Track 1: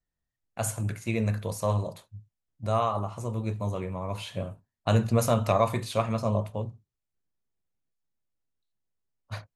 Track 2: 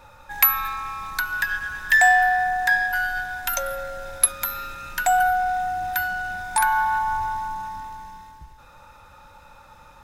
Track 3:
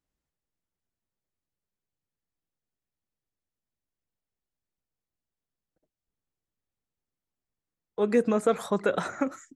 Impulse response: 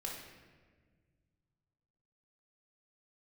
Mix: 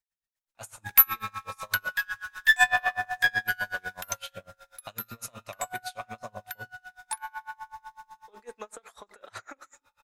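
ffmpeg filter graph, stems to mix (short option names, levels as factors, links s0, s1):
-filter_complex "[0:a]alimiter=limit=0.0944:level=0:latency=1:release=226,volume=1.06[s0];[1:a]adelay=550,volume=0.944,afade=t=out:st=3.92:d=0.28:silence=0.334965[s1];[2:a]highpass=300,acompressor=threshold=0.0447:ratio=6,adelay=300,volume=0.891,asplit=2[s2][s3];[s3]volume=0.158[s4];[3:a]atrim=start_sample=2205[s5];[s4][s5]afir=irnorm=-1:irlink=0[s6];[s0][s1][s2][s6]amix=inputs=4:normalize=0,aeval=exprs='(tanh(2.51*val(0)+0.8)-tanh(0.8))/2.51':c=same,tiltshelf=f=680:g=-8,aeval=exprs='val(0)*pow(10,-30*(0.5-0.5*cos(2*PI*8*n/s))/20)':c=same"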